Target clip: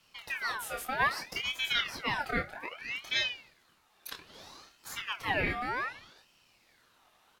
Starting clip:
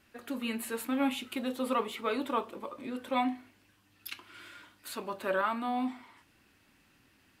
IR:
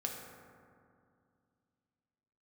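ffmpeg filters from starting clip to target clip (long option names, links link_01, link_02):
-filter_complex "[0:a]asplit=2[link_01][link_02];[link_02]adelay=25,volume=-5dB[link_03];[link_01][link_03]amix=inputs=2:normalize=0,aeval=exprs='val(0)*sin(2*PI*1900*n/s+1900*0.5/0.63*sin(2*PI*0.63*n/s))':channel_layout=same,volume=1.5dB"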